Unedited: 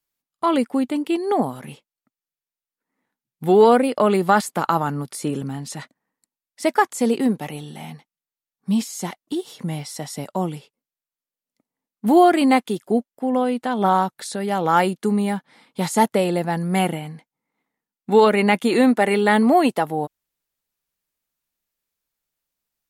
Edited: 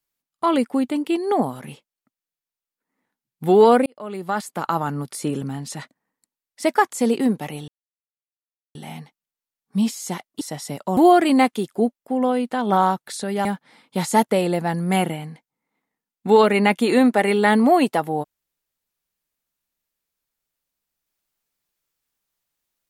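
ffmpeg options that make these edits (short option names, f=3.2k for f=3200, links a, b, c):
-filter_complex "[0:a]asplit=6[a][b][c][d][e][f];[a]atrim=end=3.86,asetpts=PTS-STARTPTS,afade=t=out:st=3.856:d=0.004:c=hsin[g];[b]atrim=start=3.86:end=7.68,asetpts=PTS-STARTPTS,afade=t=in:d=1.2,afade=t=out:st=3.816:d=0.004:c=hsin,apad=pad_dur=1.07[h];[c]atrim=start=7.68:end=9.342,asetpts=PTS-STARTPTS,afade=t=in:d=0.004:c=hsin[i];[d]atrim=start=9.888:end=10.452[j];[e]atrim=start=12.088:end=14.572[k];[f]atrim=start=15.278[l];[g][h][i]concat=n=3:v=0:a=1[m];[m][j]acrossfade=d=0.004:c1=hsin:c2=hsin[n];[n][k]acrossfade=d=0.004:c1=hsin:c2=hsin[o];[o][l]acrossfade=d=0.004:c1=hsin:c2=hsin"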